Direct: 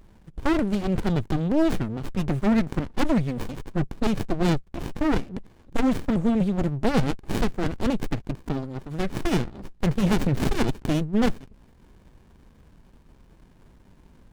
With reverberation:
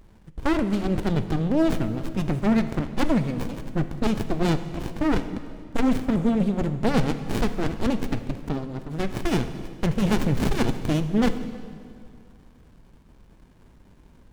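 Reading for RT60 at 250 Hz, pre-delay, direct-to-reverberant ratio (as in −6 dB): 2.5 s, 5 ms, 9.5 dB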